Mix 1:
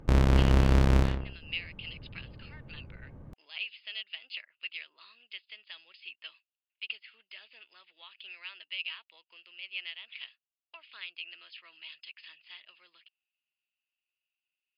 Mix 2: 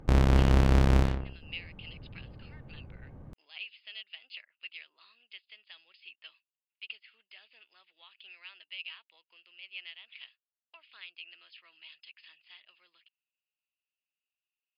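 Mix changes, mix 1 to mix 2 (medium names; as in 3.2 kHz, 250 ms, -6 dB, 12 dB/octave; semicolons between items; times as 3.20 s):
speech -5.0 dB; master: remove band-stop 760 Hz, Q 13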